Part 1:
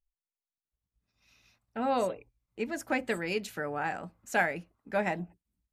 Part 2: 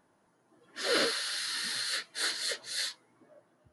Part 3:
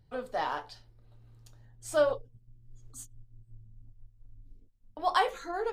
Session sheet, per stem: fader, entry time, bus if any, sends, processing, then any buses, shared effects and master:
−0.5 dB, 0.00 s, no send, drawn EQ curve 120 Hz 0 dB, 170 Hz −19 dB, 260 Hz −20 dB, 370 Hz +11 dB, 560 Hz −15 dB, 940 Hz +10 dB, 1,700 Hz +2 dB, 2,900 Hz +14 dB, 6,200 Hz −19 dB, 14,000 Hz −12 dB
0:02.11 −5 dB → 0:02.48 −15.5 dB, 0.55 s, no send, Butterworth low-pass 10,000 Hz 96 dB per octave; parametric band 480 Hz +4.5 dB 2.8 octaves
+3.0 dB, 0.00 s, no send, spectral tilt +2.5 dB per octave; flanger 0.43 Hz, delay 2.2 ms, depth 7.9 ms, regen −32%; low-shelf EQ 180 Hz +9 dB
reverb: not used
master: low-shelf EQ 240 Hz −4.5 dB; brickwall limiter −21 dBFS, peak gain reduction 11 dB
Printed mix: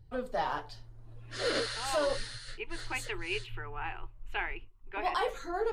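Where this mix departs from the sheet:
stem 1 −0.5 dB → −9.5 dB
stem 3: missing spectral tilt +2.5 dB per octave
master: missing low-shelf EQ 240 Hz −4.5 dB

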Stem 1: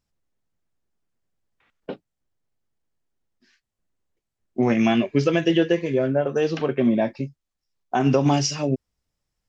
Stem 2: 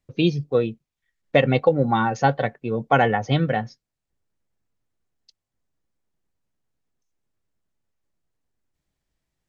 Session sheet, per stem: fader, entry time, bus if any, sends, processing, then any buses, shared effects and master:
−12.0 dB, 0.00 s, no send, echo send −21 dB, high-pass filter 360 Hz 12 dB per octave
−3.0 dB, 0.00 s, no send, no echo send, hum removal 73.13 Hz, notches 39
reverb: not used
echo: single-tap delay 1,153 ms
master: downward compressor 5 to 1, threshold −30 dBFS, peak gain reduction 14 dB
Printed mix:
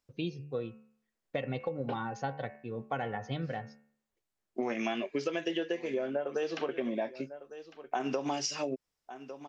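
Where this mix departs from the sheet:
stem 1 −12.0 dB → −2.0 dB
stem 2 −3.0 dB → −13.0 dB

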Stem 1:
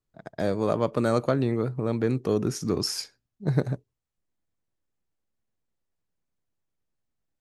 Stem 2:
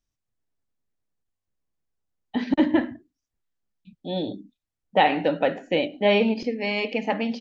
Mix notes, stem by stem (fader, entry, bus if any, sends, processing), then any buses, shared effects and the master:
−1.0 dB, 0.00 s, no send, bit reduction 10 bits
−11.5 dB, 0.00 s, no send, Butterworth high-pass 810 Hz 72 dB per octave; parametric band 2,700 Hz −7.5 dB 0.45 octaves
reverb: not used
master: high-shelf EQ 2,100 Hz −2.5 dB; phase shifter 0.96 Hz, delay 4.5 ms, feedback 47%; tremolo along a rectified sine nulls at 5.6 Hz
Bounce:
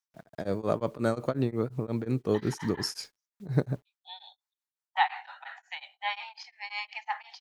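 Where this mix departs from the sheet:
stem 2 −11.5 dB → 0.0 dB
master: missing phase shifter 0.96 Hz, delay 4.5 ms, feedback 47%

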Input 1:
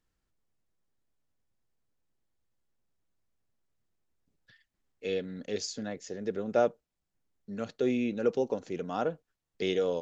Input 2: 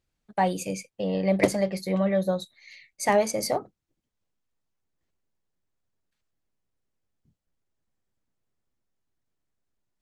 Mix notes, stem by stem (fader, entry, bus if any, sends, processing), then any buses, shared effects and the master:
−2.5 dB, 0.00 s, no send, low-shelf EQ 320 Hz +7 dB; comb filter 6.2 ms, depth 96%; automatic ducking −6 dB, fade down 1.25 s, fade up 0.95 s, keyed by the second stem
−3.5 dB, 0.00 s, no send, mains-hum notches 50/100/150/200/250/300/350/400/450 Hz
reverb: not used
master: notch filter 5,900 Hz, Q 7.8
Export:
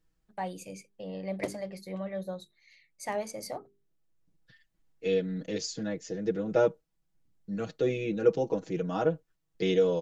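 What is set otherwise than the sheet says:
stem 2 −3.5 dB → −11.5 dB
master: missing notch filter 5,900 Hz, Q 7.8

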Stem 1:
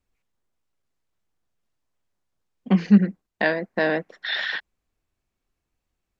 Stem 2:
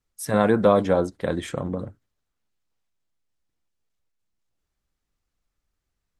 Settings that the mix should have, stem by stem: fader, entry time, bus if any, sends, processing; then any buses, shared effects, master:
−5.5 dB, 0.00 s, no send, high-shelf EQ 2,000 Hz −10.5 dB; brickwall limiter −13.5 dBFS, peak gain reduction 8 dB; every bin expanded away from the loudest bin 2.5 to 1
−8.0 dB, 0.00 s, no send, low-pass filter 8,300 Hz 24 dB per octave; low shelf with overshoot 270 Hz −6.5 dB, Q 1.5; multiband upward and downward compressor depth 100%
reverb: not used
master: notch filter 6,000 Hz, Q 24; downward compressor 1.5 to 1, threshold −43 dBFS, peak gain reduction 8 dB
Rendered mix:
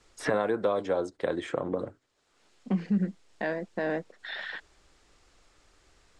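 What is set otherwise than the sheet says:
stem 1: missing every bin expanded away from the loudest bin 2.5 to 1
master: missing downward compressor 1.5 to 1, threshold −43 dBFS, peak gain reduction 8 dB

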